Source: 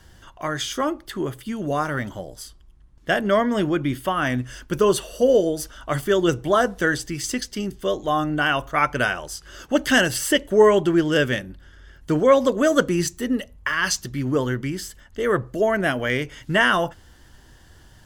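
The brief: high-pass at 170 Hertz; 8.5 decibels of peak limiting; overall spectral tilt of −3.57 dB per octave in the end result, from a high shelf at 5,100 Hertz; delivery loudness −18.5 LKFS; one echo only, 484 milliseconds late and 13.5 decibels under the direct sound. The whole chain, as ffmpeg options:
ffmpeg -i in.wav -af "highpass=170,highshelf=frequency=5100:gain=5,alimiter=limit=-11dB:level=0:latency=1,aecho=1:1:484:0.211,volume=5dB" out.wav

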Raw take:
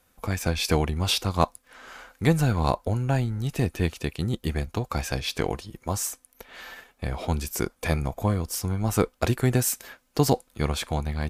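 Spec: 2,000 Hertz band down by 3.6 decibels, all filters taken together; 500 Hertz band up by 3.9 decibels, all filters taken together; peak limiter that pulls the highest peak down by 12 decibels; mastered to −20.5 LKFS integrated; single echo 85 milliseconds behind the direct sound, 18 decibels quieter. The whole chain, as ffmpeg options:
ffmpeg -i in.wav -af "equalizer=frequency=500:width_type=o:gain=5,equalizer=frequency=2000:width_type=o:gain=-5,alimiter=limit=-16dB:level=0:latency=1,aecho=1:1:85:0.126,volume=8.5dB" out.wav

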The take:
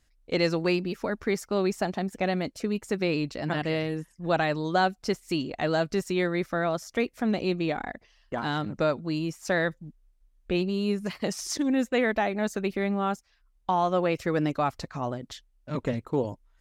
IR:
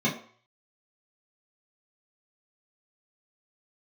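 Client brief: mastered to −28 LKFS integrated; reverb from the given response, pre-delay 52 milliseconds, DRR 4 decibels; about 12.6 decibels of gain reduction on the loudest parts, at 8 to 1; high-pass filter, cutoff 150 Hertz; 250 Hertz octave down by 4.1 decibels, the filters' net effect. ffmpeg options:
-filter_complex "[0:a]highpass=150,equalizer=frequency=250:width_type=o:gain=-5,acompressor=threshold=-34dB:ratio=8,asplit=2[link_01][link_02];[1:a]atrim=start_sample=2205,adelay=52[link_03];[link_02][link_03]afir=irnorm=-1:irlink=0,volume=-16dB[link_04];[link_01][link_04]amix=inputs=2:normalize=0,volume=8dB"

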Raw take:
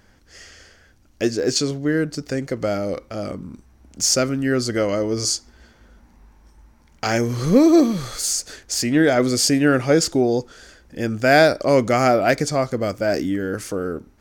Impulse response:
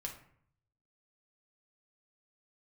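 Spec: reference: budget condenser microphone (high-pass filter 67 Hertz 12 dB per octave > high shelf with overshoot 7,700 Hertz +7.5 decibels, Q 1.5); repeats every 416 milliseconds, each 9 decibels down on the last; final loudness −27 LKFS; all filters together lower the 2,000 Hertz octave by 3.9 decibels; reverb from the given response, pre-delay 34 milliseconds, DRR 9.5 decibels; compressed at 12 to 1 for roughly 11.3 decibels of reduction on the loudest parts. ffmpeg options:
-filter_complex "[0:a]equalizer=frequency=2000:width_type=o:gain=-5,acompressor=threshold=-21dB:ratio=12,aecho=1:1:416|832|1248|1664:0.355|0.124|0.0435|0.0152,asplit=2[link_01][link_02];[1:a]atrim=start_sample=2205,adelay=34[link_03];[link_02][link_03]afir=irnorm=-1:irlink=0,volume=-8dB[link_04];[link_01][link_04]amix=inputs=2:normalize=0,highpass=67,highshelf=frequency=7700:width_type=q:width=1.5:gain=7.5,volume=-2dB"

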